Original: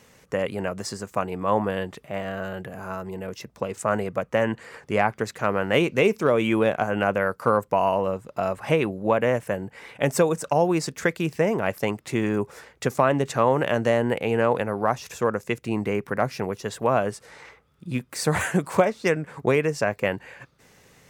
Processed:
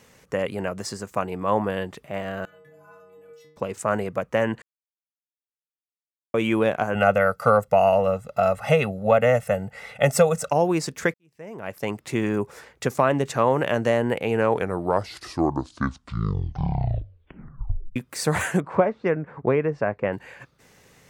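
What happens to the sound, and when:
2.45–3.57 metallic resonator 150 Hz, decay 0.84 s, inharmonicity 0.008
4.62–6.34 mute
6.95–10.51 comb 1.5 ms, depth 100%
11.14–11.99 fade in quadratic
14.29 tape stop 3.67 s
18.6–20.13 LPF 1600 Hz

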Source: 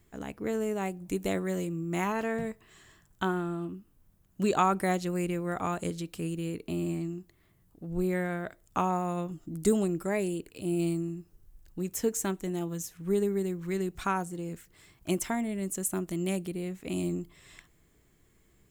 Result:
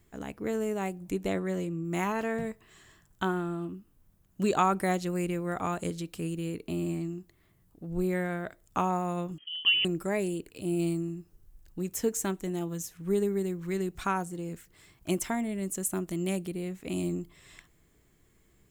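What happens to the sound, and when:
1.1–1.85 high shelf 6900 Hz -10.5 dB
9.38–9.85 inverted band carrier 3200 Hz

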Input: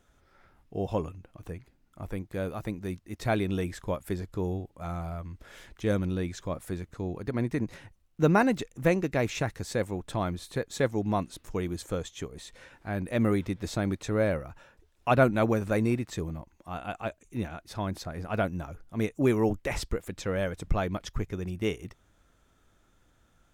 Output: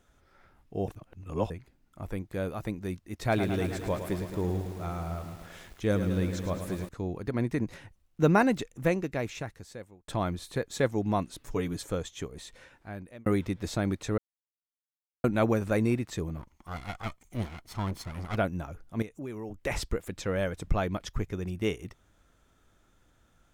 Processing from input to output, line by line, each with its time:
0.88–1.5 reverse
3.14–6.89 lo-fi delay 0.108 s, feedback 80%, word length 8-bit, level -9 dB
8.55–10.08 fade out
11.4–11.89 comb 7.1 ms
12.44–13.26 fade out
14.18–15.24 mute
16.37–18.36 minimum comb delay 0.94 ms
19.02–19.62 compressor 2.5:1, threshold -42 dBFS

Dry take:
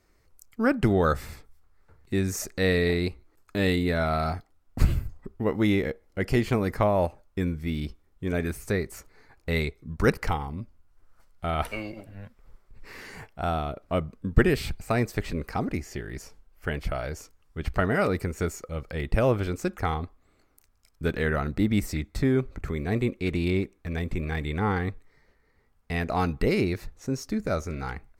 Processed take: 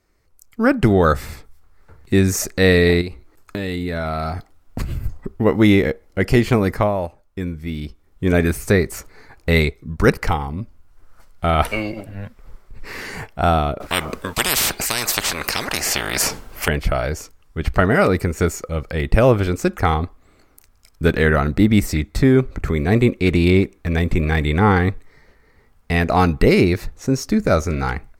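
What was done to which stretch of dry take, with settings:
3.01–5.04 compressor 10:1, threshold -32 dBFS
6.66–8.28 dip -9 dB, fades 0.35 s
13.8–16.68 spectral compressor 10:1
whole clip: AGC gain up to 12 dB

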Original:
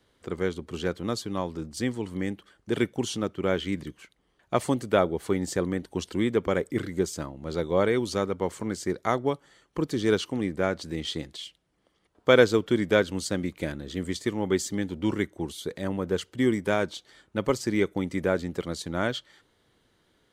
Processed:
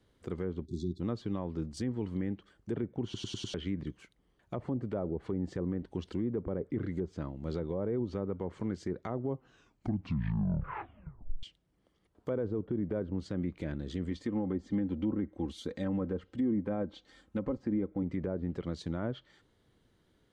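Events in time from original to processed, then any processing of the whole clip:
0.66–1 spectral delete 400–3400 Hz
3.04 stutter in place 0.10 s, 5 plays
9.22 tape stop 2.21 s
14.11–18.03 comb 3.8 ms, depth 57%
whole clip: treble ducked by the level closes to 850 Hz, closed at -21.5 dBFS; low shelf 370 Hz +9.5 dB; limiter -16.5 dBFS; gain -7.5 dB

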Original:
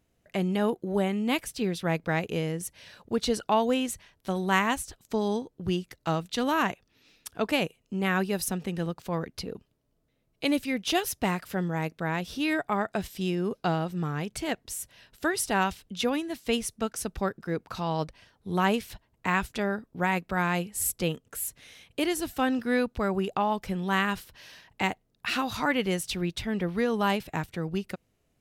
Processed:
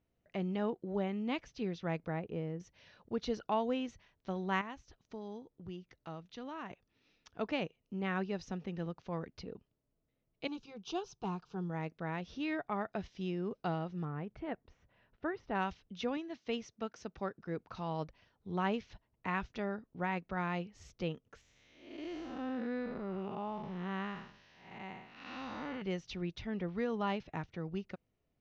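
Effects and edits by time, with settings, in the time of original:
2.08–2.6 LPF 1100 Hz 6 dB/oct
4.61–6.71 compressor 1.5:1, threshold -47 dBFS
10.47–11.7 fixed phaser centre 390 Hz, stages 8
14.05–15.55 LPF 1800 Hz
16.17–17.39 HPF 170 Hz 6 dB/oct
21.41–25.82 time blur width 0.274 s
whole clip: elliptic low-pass 6200 Hz, stop band 40 dB; high shelf 3100 Hz -9.5 dB; notch 1600 Hz, Q 26; gain -7.5 dB

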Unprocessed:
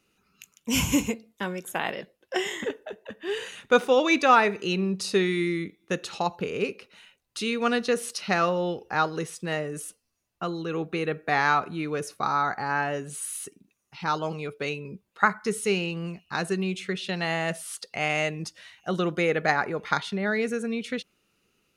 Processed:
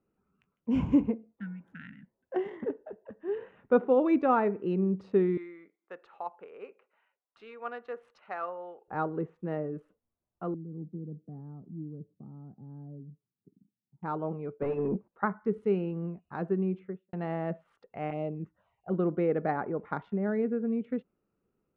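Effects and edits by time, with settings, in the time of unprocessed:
1.42–2.23 spectral repair 280–1300 Hz
5.37–8.88 HPF 820 Hz
10.54–14.03 Butterworth band-pass 170 Hz, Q 1.2
14.62–15.08 overdrive pedal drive 30 dB, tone 1100 Hz, clips at -17 dBFS
16.72–17.13 studio fade out
18.1–18.92 envelope phaser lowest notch 200 Hz, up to 1700 Hz, full sweep at -25 dBFS
whole clip: Wiener smoothing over 9 samples; LPF 1000 Hz 12 dB/oct; dynamic EQ 270 Hz, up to +6 dB, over -38 dBFS, Q 1; gain -5 dB

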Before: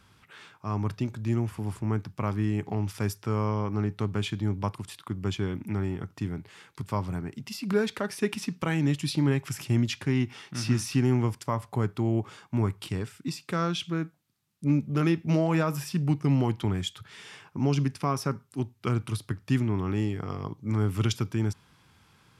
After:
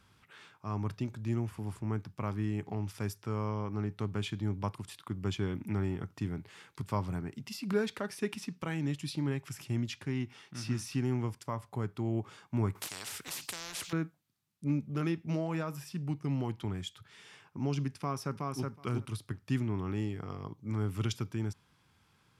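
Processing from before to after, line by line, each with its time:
12.75–13.93 spectral compressor 10:1
18–18.71 echo throw 0.37 s, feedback 10%, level -2.5 dB
whole clip: vocal rider 2 s; gain -7.5 dB

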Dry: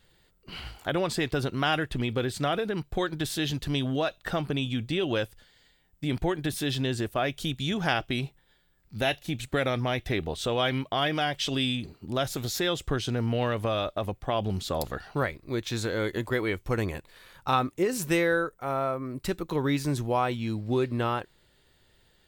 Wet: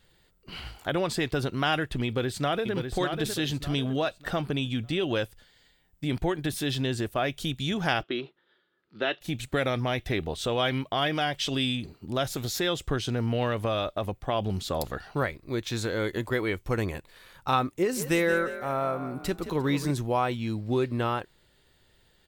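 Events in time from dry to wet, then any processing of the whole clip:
2.05–2.73 echo throw 0.6 s, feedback 35%, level -6 dB
8.03–9.21 speaker cabinet 320–3800 Hz, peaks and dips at 350 Hz +9 dB, 780 Hz -8 dB, 1300 Hz +6 dB, 2300 Hz -6 dB
17.69–19.91 frequency-shifting echo 0.175 s, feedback 38%, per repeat +39 Hz, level -12 dB

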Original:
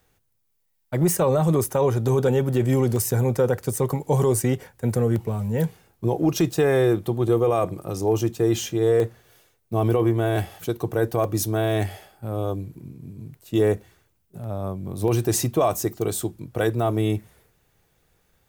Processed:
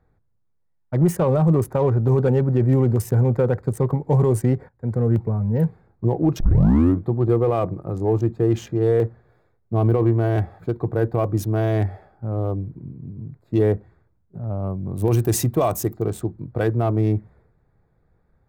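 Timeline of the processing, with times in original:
4.69–5.12 fade in, from -14 dB
6.4 tape start 0.64 s
14.7–15.97 high shelf 5300 Hz +11.5 dB
whole clip: Wiener smoothing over 15 samples; tone controls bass +5 dB, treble -9 dB

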